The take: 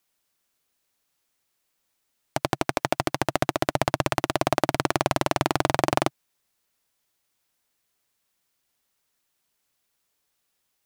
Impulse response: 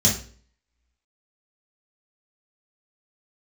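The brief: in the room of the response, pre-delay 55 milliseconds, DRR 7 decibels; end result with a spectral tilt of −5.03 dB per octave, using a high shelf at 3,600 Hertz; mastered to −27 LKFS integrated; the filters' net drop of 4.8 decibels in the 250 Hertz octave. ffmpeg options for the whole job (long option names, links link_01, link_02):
-filter_complex "[0:a]equalizer=frequency=250:width_type=o:gain=-7,highshelf=frequency=3600:gain=-5,asplit=2[link_01][link_02];[1:a]atrim=start_sample=2205,adelay=55[link_03];[link_02][link_03]afir=irnorm=-1:irlink=0,volume=-20.5dB[link_04];[link_01][link_04]amix=inputs=2:normalize=0,volume=-1.5dB"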